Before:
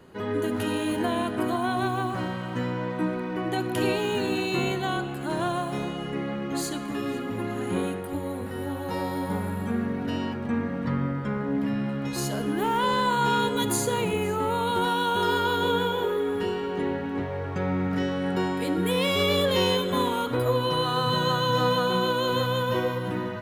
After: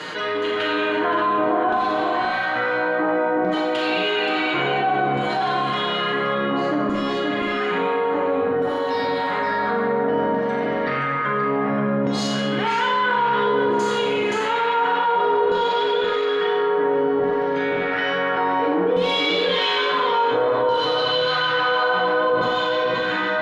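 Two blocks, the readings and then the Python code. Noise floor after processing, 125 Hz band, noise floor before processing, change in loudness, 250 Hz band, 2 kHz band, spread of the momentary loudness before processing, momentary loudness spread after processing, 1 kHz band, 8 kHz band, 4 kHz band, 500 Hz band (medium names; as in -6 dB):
-23 dBFS, -4.5 dB, -33 dBFS, +6.0 dB, +1.5 dB, +9.5 dB, 8 LU, 3 LU, +7.5 dB, -6.5 dB, +5.5 dB, +7.0 dB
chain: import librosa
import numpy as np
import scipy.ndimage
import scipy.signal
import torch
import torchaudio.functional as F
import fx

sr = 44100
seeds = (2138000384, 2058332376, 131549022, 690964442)

y = scipy.signal.sosfilt(scipy.signal.butter(2, 98.0, 'highpass', fs=sr, output='sos'), x)
y = fx.peak_eq(y, sr, hz=7800.0, db=8.5, octaves=0.61)
y = fx.notch(y, sr, hz=2600.0, q=24.0)
y = y + 0.8 * np.pad(y, (int(6.6 * sr / 1000.0), 0))[:len(y)]
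y = 10.0 ** (-20.5 / 20.0) * np.tanh(y / 10.0 ** (-20.5 / 20.0))
y = fx.filter_lfo_bandpass(y, sr, shape='saw_down', hz=0.58, low_hz=490.0, high_hz=7100.0, q=1.0)
y = fx.air_absorb(y, sr, metres=300.0)
y = y + 10.0 ** (-7.0 / 20.0) * np.pad(y, (int(525 * sr / 1000.0), 0))[:len(y)]
y = fx.rev_schroeder(y, sr, rt60_s=0.72, comb_ms=30, drr_db=0.5)
y = fx.env_flatten(y, sr, amount_pct=70)
y = F.gain(torch.from_numpy(y), 5.0).numpy()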